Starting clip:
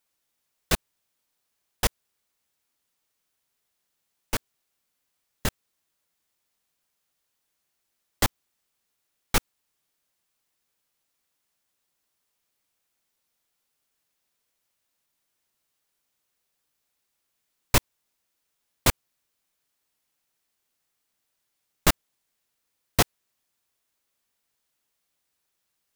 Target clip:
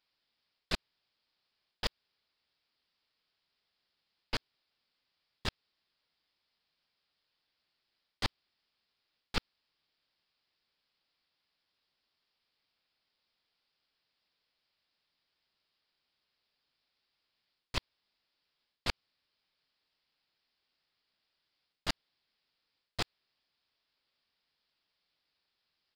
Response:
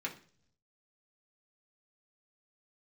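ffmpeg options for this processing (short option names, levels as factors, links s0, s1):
-af "aemphasis=mode=production:type=75fm,areverse,acompressor=threshold=0.2:ratio=16,areverse,acrusher=bits=7:mode=log:mix=0:aa=0.000001,aresample=11025,aresample=44100,aeval=exprs='clip(val(0),-1,0.0251)':c=same,volume=0.75"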